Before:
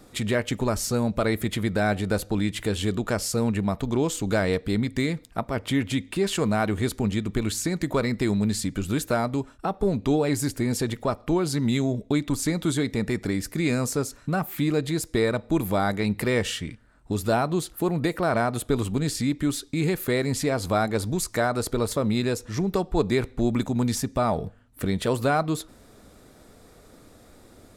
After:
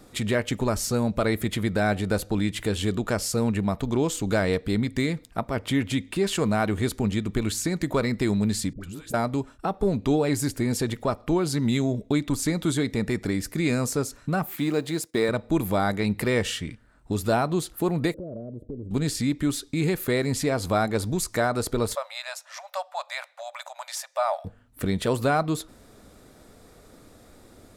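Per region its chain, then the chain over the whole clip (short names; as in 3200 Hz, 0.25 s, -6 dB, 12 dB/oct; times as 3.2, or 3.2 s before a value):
8.73–9.14 compressor 10:1, threshold -33 dBFS + dispersion highs, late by 80 ms, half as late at 750 Hz
14.56–15.29 G.711 law mismatch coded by A + HPF 170 Hz + gate -54 dBFS, range -9 dB
18.14–18.91 elliptic low-pass 580 Hz + compressor 3:1, threshold -35 dBFS
21.95–24.45 brick-wall FIR high-pass 540 Hz + high shelf 5400 Hz -4 dB
whole clip: dry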